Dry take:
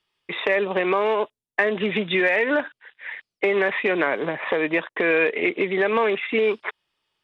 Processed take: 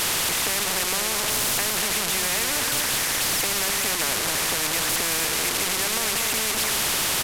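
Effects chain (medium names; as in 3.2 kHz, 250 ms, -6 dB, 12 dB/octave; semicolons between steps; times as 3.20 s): one-bit delta coder 64 kbps, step -17.5 dBFS; loudspeakers at several distances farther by 63 m -12 dB, 82 m -10 dB; spectrum-flattening compressor 4:1; trim -4.5 dB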